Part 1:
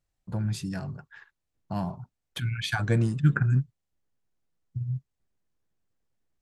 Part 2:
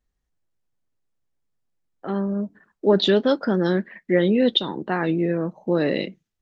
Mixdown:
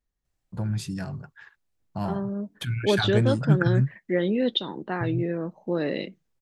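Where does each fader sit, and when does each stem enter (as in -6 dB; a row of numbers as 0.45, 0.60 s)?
+1.0, -5.5 dB; 0.25, 0.00 s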